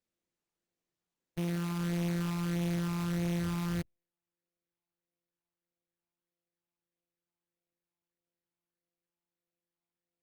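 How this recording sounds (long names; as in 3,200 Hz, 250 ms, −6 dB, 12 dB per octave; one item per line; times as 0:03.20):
a buzz of ramps at a fixed pitch in blocks of 256 samples
phaser sweep stages 12, 1.6 Hz, lowest notch 540–1,300 Hz
aliases and images of a low sample rate 6,100 Hz, jitter 20%
Opus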